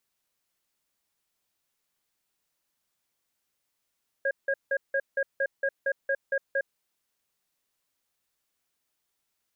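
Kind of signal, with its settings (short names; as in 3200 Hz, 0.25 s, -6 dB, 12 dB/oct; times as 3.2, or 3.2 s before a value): cadence 549 Hz, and 1630 Hz, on 0.06 s, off 0.17 s, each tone -26 dBFS 2.46 s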